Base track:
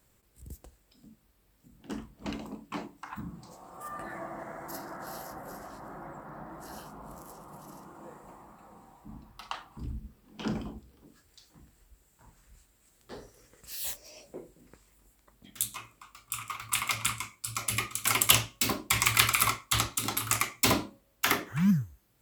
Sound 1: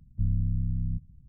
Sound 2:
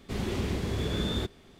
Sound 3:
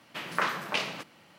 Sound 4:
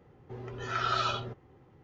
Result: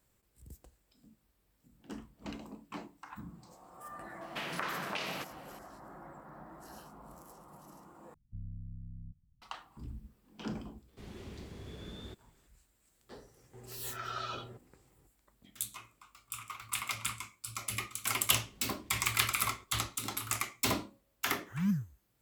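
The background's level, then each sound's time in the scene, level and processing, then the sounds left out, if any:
base track -6.5 dB
4.21 s: add 3 + compression 4:1, threshold -34 dBFS
8.14 s: replace with 1 -17.5 dB
10.88 s: add 2 -16.5 dB
13.24 s: add 4 -10 dB
18.38 s: add 2 -15 dB + compression, threshold -41 dBFS

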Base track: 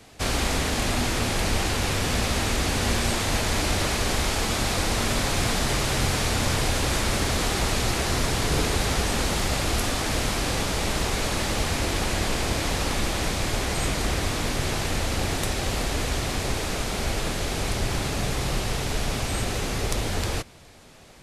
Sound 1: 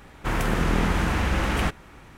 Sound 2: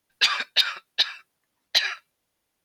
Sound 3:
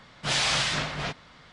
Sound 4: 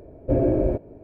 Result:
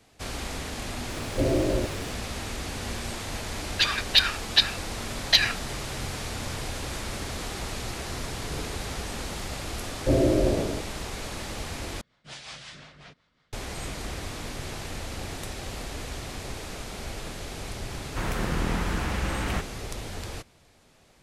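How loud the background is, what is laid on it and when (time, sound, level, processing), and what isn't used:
base track -9.5 dB
1.09 s: add 4 -5 dB + jump at every zero crossing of -31 dBFS
3.58 s: add 2 -4 dB + level rider
9.78 s: add 4 -1.5 dB + decay stretcher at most 39 dB/s
12.01 s: replace with 3 -15 dB + rotary cabinet horn 5.5 Hz
17.91 s: add 1 -5.5 dB

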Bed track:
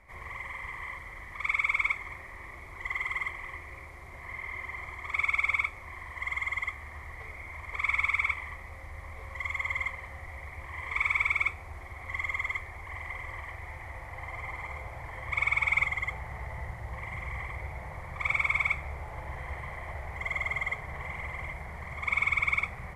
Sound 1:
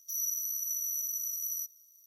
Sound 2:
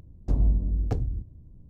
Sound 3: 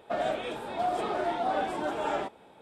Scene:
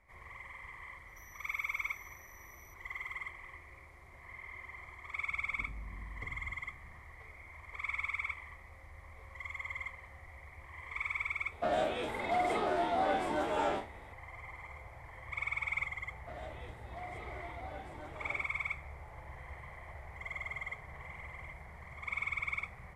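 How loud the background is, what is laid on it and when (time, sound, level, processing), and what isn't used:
bed track -9.5 dB
1.08 s: add 1 -17.5 dB + compression 4:1, threshold -42 dBFS
5.31 s: add 2 -9 dB + compression, threshold -34 dBFS
11.52 s: add 3 -3 dB + spectral sustain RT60 0.32 s
16.17 s: add 3 -17.5 dB

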